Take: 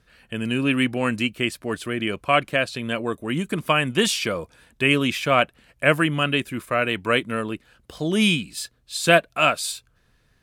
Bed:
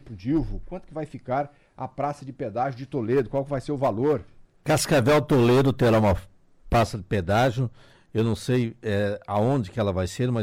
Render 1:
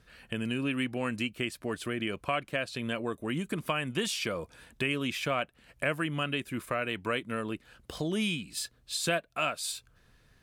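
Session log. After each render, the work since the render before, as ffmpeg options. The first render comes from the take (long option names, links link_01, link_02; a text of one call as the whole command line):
ffmpeg -i in.wav -af "acompressor=threshold=-33dB:ratio=2.5" out.wav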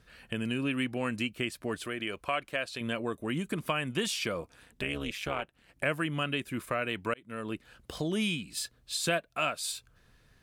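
ffmpeg -i in.wav -filter_complex "[0:a]asettb=1/sr,asplit=3[link_01][link_02][link_03];[link_01]atrim=end=1.864[link_04];[link_02]atrim=start=1.86:end=2.81,asetpts=PTS-STARTPTS,afade=type=in:duration=0.004:curve=qsin,afade=type=out:start_time=0.946:duration=0.004:curve=qsin,equalizer=frequency=150:width_type=o:width=2.1:gain=-8[link_05];[link_03]atrim=start=2.806[link_06];[link_04][link_05]acrossfade=duration=0.004:curve1=hsin:curve2=qsin[link_07];[link_07][link_06]acrossfade=duration=0.004:curve1=qsin:curve2=hsin,asettb=1/sr,asplit=3[link_08][link_09][link_10];[link_08]atrim=end=4.414[link_11];[link_09]atrim=start=4.41:end=5.83,asetpts=PTS-STARTPTS,afade=type=in:duration=0.004:curve=qsin,afade=type=out:start_time=1.416:duration=0.004:curve=qsin,tremolo=f=210:d=0.857[link_12];[link_10]atrim=start=5.826[link_13];[link_11][link_12]acrossfade=duration=0.004:curve1=hsin:curve2=qsin[link_14];[link_14][link_13]acrossfade=duration=0.004:curve1=qsin:curve2=hsin,asplit=2[link_15][link_16];[link_15]atrim=end=7.14,asetpts=PTS-STARTPTS,afade=type=out:start_time=7.136:duration=0.004:curve=hsin[link_17];[link_16]atrim=start=7.14,asetpts=PTS-STARTPTS,afade=type=in:duration=0.4[link_18];[link_17][link_18]concat=n=2:v=0:a=1" out.wav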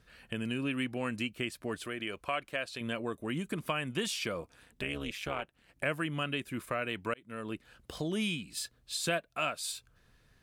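ffmpeg -i in.wav -af "volume=-2.5dB" out.wav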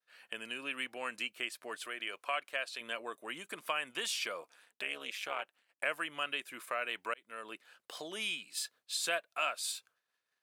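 ffmpeg -i in.wav -af "agate=range=-33dB:threshold=-54dB:ratio=3:detection=peak,highpass=660" out.wav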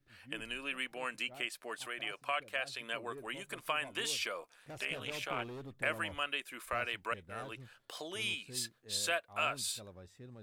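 ffmpeg -i in.wav -i bed.wav -filter_complex "[1:a]volume=-27.5dB[link_01];[0:a][link_01]amix=inputs=2:normalize=0" out.wav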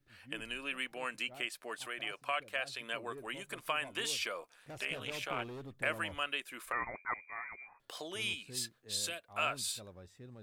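ffmpeg -i in.wav -filter_complex "[0:a]asettb=1/sr,asplit=3[link_01][link_02][link_03];[link_01]atrim=end=6.724[link_04];[link_02]atrim=start=6.72:end=7.8,asetpts=PTS-STARTPTS,afade=type=in:duration=0.004:curve=qsin,afade=type=out:start_time=1.076:duration=0.004:curve=qsin,lowpass=frequency=2100:width_type=q:width=0.5098,lowpass=frequency=2100:width_type=q:width=0.6013,lowpass=frequency=2100:width_type=q:width=0.9,lowpass=frequency=2100:width_type=q:width=2.563,afreqshift=-2500[link_05];[link_03]atrim=start=7.796[link_06];[link_04][link_05]acrossfade=duration=0.004:curve1=hsin:curve2=qsin[link_07];[link_07][link_06]acrossfade=duration=0.004:curve1=qsin:curve2=hsin,asettb=1/sr,asplit=3[link_08][link_09][link_10];[link_08]atrim=end=8.334[link_11];[link_09]atrim=start=8.33:end=9.3,asetpts=PTS-STARTPTS,afade=type=in:duration=0.004:curve=qsin,afade=type=out:start_time=0.966:duration=0.004:curve=qsin,acrossover=split=390|3000[link_12][link_13][link_14];[link_13]acompressor=threshold=-47dB:ratio=6:attack=3.2:release=140:knee=2.83:detection=peak[link_15];[link_12][link_15][link_14]amix=inputs=3:normalize=0[link_16];[link_10]atrim=start=9.296[link_17];[link_11][link_16]acrossfade=duration=0.004:curve1=hsin:curve2=qsin[link_18];[link_18][link_17]acrossfade=duration=0.004:curve1=qsin:curve2=hsin" out.wav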